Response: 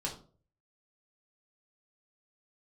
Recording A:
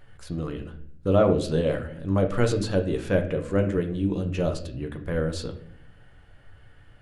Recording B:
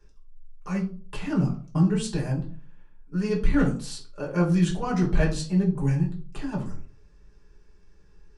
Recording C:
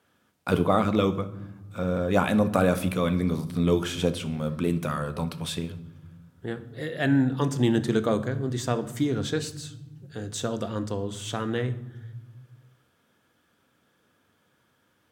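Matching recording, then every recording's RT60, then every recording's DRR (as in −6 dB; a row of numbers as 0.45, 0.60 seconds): B; 0.65 s, 0.45 s, non-exponential decay; 4.0, −3.5, 10.0 decibels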